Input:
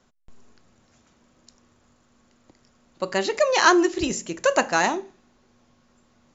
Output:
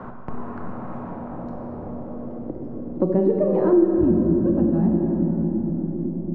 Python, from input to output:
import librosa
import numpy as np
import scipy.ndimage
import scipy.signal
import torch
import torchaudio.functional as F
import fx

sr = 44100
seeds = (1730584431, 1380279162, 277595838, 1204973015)

y = fx.filter_sweep_lowpass(x, sr, from_hz=1100.0, to_hz=190.0, start_s=0.68, end_s=4.44, q=1.8)
y = fx.bass_treble(y, sr, bass_db=5, treble_db=2)
y = fx.room_shoebox(y, sr, seeds[0], volume_m3=180.0, walls='hard', distance_m=0.5)
y = fx.band_squash(y, sr, depth_pct=70)
y = y * 10.0 ** (5.0 / 20.0)